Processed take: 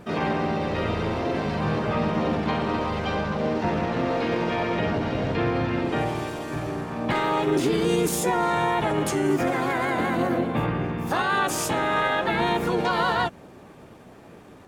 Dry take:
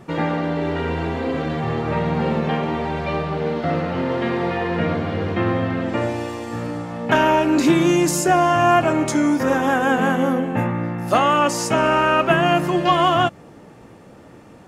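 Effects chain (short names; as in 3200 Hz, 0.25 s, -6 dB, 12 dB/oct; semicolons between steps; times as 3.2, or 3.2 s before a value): limiter -13 dBFS, peak gain reduction 9.5 dB; harmoniser -12 st -8 dB, +4 st -8 dB, +5 st 0 dB; gain -6 dB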